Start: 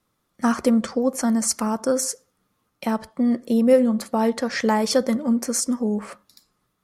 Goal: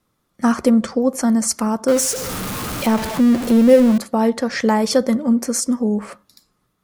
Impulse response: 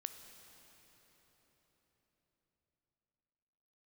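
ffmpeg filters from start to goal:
-filter_complex "[0:a]asettb=1/sr,asplit=3[a][b][c];[a]atrim=end=1.884[d];[b]atrim=start=1.88:end=3.98,asetpts=PTS-STARTPTS,afade=t=in:d=0.004:c=qsin,afade=t=out:st=2.096:d=0.004:c=qsin,aeval=exprs='val(0)+0.5*0.0708*sgn(val(0))':c=same[e];[c]atrim=start=3.976[f];[d][e]acrossfade=d=0.004:c1=hsin:c2=qsin[g];[g][f]acrossfade=d=0.004:c1=qsin:c2=hsin,lowshelf=f=460:g=3,volume=2dB"

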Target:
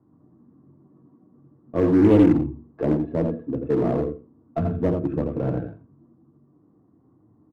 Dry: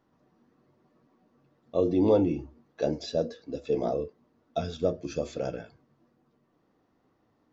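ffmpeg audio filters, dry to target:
-filter_complex "[0:a]highpass=110,equalizer=f=120:t=q:w=4:g=4,equalizer=f=310:t=q:w=4:g=7,equalizer=f=550:t=q:w=4:g=-4,equalizer=f=1.1k:t=q:w=4:g=7,lowpass=f=2.5k:w=0.5412,lowpass=f=2.5k:w=1.3066,acrossover=split=290[a][b];[b]adynamicsmooth=sensitivity=6.5:basefreq=1k[c];[a][c]amix=inputs=2:normalize=0,asoftclip=type=tanh:threshold=-11dB,aemphasis=mode=reproduction:type=riaa,aecho=1:1:84|168|252:0.531|0.0796|0.0119,asplit=2[d][e];[e]aeval=exprs='0.0708*(abs(mod(val(0)/0.0708+3,4)-2)-1)':c=same,volume=-9.5dB[f];[d][f]amix=inputs=2:normalize=0"

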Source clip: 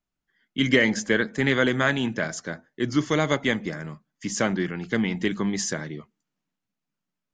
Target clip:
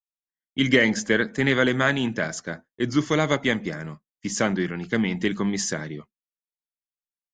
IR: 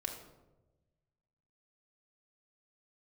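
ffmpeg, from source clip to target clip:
-af "agate=range=-33dB:threshold=-35dB:ratio=3:detection=peak,volume=1dB"

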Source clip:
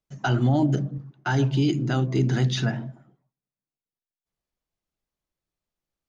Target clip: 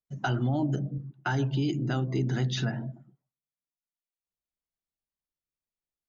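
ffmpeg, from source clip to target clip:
-af "afftdn=nr=14:nf=-47,acompressor=threshold=-33dB:ratio=2,volume=2dB"

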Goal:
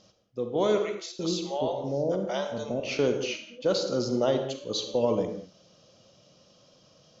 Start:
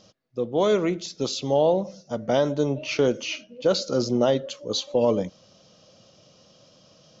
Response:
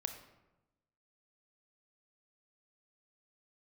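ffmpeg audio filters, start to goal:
-filter_complex "[0:a]asettb=1/sr,asplit=3[a][b][c];[a]atrim=end=0.784[d];[b]atrim=start=0.78:end=2.8,asetpts=PTS-STARTPTS,afade=t=in:d=0.004:c=qsin,afade=t=out:st=2.016:d=0.004:c=qsin,acrossover=split=590[e][f];[e]adelay=410[g];[g][f]amix=inputs=2:normalize=0,atrim=end_sample=89082[h];[c]atrim=start=2.796[i];[d][h]acrossfade=d=0.004:c1=hsin:c2=qsin[j];[j][i]acrossfade=d=0.004:c1=qsin:c2=hsin[k];[1:a]atrim=start_sample=2205,atrim=end_sample=6615,asetrate=28665,aresample=44100[l];[k][l]afir=irnorm=-1:irlink=0,volume=-5dB"

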